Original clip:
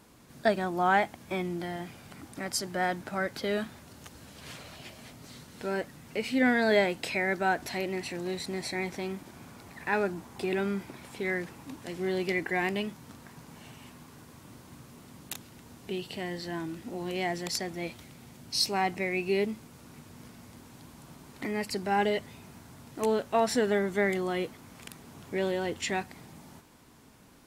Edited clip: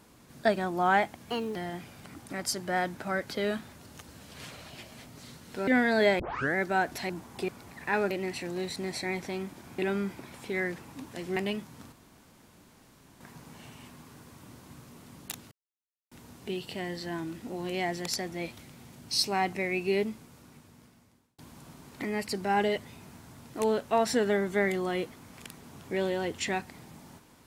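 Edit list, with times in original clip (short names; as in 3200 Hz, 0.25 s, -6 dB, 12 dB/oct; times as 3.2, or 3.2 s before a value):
1.3–1.62 speed 126%
5.74–6.38 cut
6.9 tape start 0.36 s
7.8–9.48 swap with 10.1–10.49
12.07–12.66 cut
13.22 insert room tone 1.28 s
15.53 insert silence 0.60 s
19.42–20.8 fade out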